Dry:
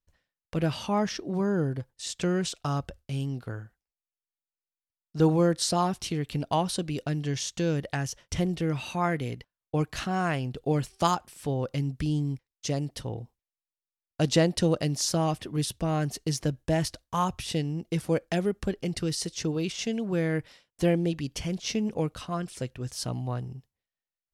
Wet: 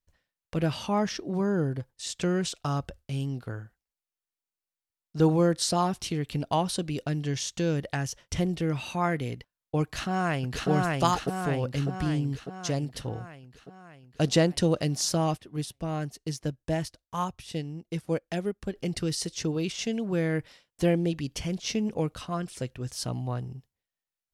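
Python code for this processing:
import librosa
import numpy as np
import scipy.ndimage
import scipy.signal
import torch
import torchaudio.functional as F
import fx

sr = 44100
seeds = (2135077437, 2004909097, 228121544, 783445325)

y = fx.echo_throw(x, sr, start_s=9.83, length_s=0.86, ms=600, feedback_pct=60, wet_db=-0.5)
y = fx.upward_expand(y, sr, threshold_db=-46.0, expansion=1.5, at=(15.36, 18.74), fade=0.02)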